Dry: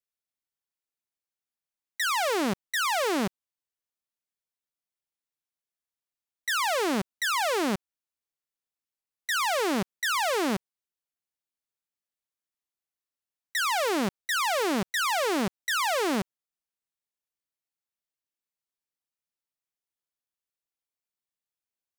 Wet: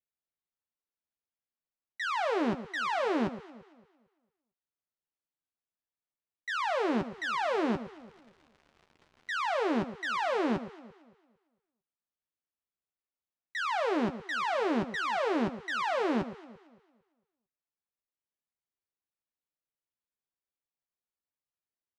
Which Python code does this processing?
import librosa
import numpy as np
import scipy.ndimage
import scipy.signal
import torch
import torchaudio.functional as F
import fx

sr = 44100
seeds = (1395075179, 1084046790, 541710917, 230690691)

y = fx.dmg_crackle(x, sr, seeds[0], per_s=170.0, level_db=-38.0, at=(6.87, 9.54), fade=0.02)
y = fx.spacing_loss(y, sr, db_at_10k=26)
y = fx.doubler(y, sr, ms=13.0, db=-8.0)
y = fx.echo_alternate(y, sr, ms=113, hz=1300.0, feedback_pct=58, wet_db=-12.0)
y = F.gain(torch.from_numpy(y), -1.5).numpy()